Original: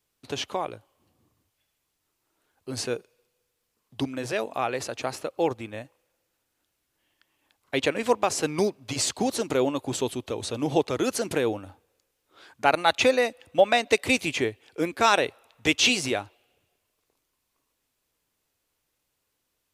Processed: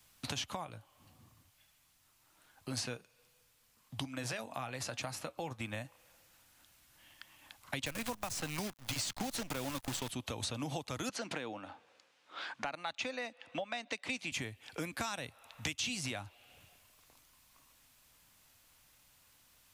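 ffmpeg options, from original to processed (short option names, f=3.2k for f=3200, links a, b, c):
-filter_complex "[0:a]asplit=3[a][b][c];[a]afade=t=out:st=0.63:d=0.02[d];[b]flanger=delay=6:depth=2.5:regen=-66:speed=1.2:shape=triangular,afade=t=in:st=0.63:d=0.02,afade=t=out:st=5.59:d=0.02[e];[c]afade=t=in:st=5.59:d=0.02[f];[d][e][f]amix=inputs=3:normalize=0,asettb=1/sr,asplit=3[g][h][i];[g]atrim=end=7.864[j];[h]atrim=start=7.86:end=10.1,asetpts=PTS-STARTPTS,afade=t=in:d=0.004:c=qsin,afade=t=out:st=2.236:d=0.004:c=qsin,acrusher=bits=6:dc=4:mix=0:aa=0.000001[k];[i]atrim=start=10.096[l];[j][k]acrossfade=d=0.004:c1=hsin:c2=qsin[m];[m][l]acrossfade=d=0.004:c1=qsin:c2=hsin,asettb=1/sr,asplit=3[n][o][p];[n]atrim=end=11.094[q];[o]atrim=start=11.09:end=14.32,asetpts=PTS-STARTPTS,afade=t=in:d=0.004:c=qsin,afade=t=out:st=3.226:d=0.004:c=qsin,highpass=290,lowpass=4.1k[r];[p]atrim=start=14.316[s];[q][r]acrossfade=d=0.004:c1=hsin:c2=qsin[t];[t][s]acrossfade=d=0.004:c1=qsin:c2=hsin,acompressor=threshold=-48dB:ratio=2,equalizer=f=400:t=o:w=0.81:g=-13.5,acrossover=split=230|5800[u][v][w];[u]acompressor=threshold=-55dB:ratio=4[x];[v]acompressor=threshold=-51dB:ratio=4[y];[w]acompressor=threshold=-56dB:ratio=4[z];[x][y][z]amix=inputs=3:normalize=0,volume=12dB"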